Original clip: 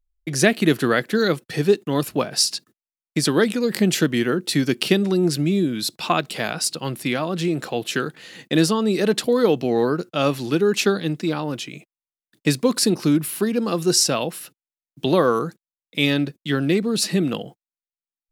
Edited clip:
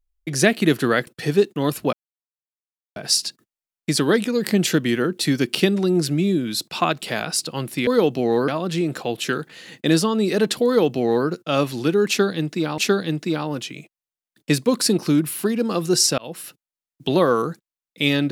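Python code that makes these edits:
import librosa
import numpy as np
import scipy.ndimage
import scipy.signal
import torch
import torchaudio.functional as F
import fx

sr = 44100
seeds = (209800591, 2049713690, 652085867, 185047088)

y = fx.edit(x, sr, fx.cut(start_s=1.07, length_s=0.31),
    fx.insert_silence(at_s=2.24, length_s=1.03),
    fx.duplicate(start_s=9.33, length_s=0.61, to_s=7.15),
    fx.repeat(start_s=10.75, length_s=0.7, count=2),
    fx.fade_in_span(start_s=14.15, length_s=0.25), tone=tone)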